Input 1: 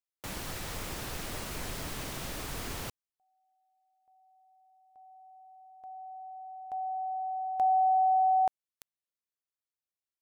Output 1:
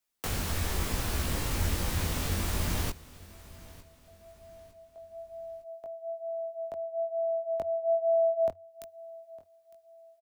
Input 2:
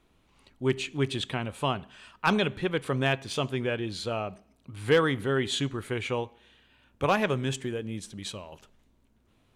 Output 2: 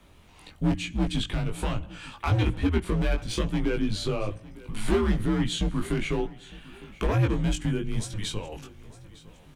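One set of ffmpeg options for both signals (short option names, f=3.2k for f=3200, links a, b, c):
-filter_complex "[0:a]highshelf=f=9.5k:g=3,asplit=2[a][b];[b]alimiter=limit=-22.5dB:level=0:latency=1:release=261,volume=-2dB[c];[a][c]amix=inputs=2:normalize=0,acrossover=split=340[d][e];[e]acompressor=threshold=-44dB:ratio=2:attack=22:release=549:knee=2.83:detection=peak[f];[d][f]amix=inputs=2:normalize=0,asoftclip=type=hard:threshold=-23.5dB,flanger=delay=18.5:depth=2.3:speed=1.1,afreqshift=-92,asplit=2[g][h];[h]aecho=0:1:907|1814|2721:0.1|0.038|0.0144[i];[g][i]amix=inputs=2:normalize=0,volume=8.5dB"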